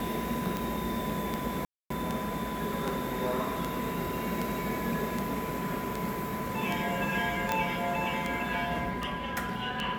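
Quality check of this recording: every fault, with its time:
tick 78 rpm
tone 1000 Hz -37 dBFS
1.65–1.9 gap 0.254 s
7.52 pop -12 dBFS

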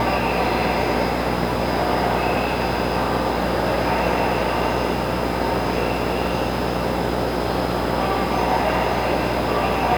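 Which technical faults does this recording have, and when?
buzz 60 Hz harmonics 15 -26 dBFS

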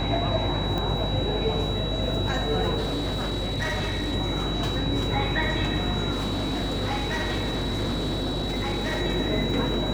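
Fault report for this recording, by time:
buzz 50 Hz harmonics 21 -30 dBFS
tone 3900 Hz -32 dBFS
0.78 pop -17 dBFS
2.77–4.13 clipped -23.5 dBFS
6.11–9.02 clipped -23.5 dBFS

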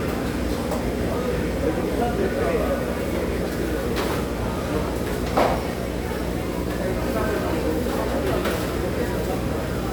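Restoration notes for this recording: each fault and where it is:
buzz 60 Hz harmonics 9 -29 dBFS

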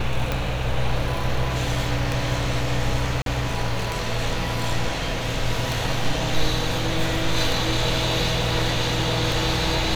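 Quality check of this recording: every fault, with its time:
tick 33 1/3 rpm
3.22–3.26 gap 42 ms

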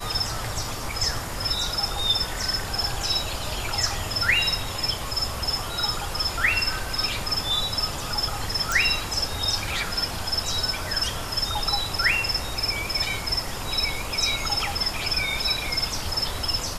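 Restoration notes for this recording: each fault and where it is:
8.72 pop

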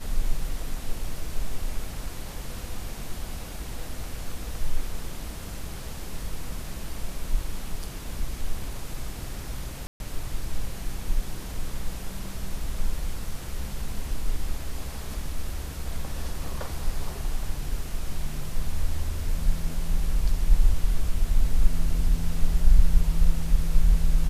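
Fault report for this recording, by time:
9.87–10 gap 0.131 s

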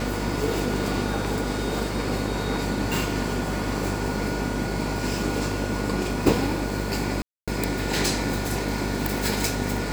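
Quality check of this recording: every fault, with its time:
buzz 50 Hz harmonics 14 -30 dBFS
7.22–7.48 gap 0.256 s

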